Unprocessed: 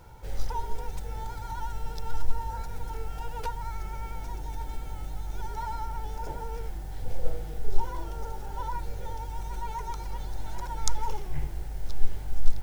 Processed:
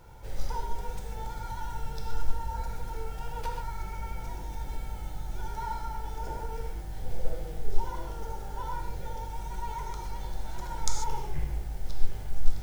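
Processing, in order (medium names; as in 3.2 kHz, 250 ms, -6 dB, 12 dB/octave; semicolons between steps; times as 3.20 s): gated-style reverb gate 170 ms flat, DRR 1.5 dB; trim -2.5 dB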